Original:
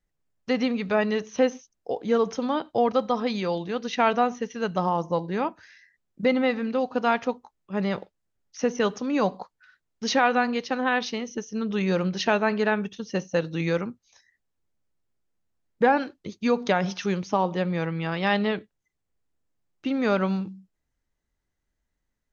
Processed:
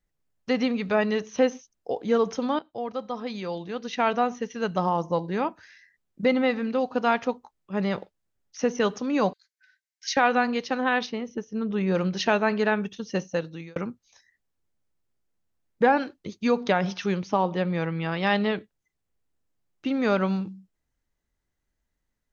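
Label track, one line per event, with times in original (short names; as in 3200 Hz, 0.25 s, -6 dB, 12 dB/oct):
2.590000	4.650000	fade in, from -13 dB
9.330000	10.170000	rippled Chebyshev high-pass 1500 Hz, ripple 6 dB
11.060000	11.950000	LPF 1500 Hz 6 dB/oct
13.210000	13.760000	fade out linear
16.600000	18.190000	LPF 5600 Hz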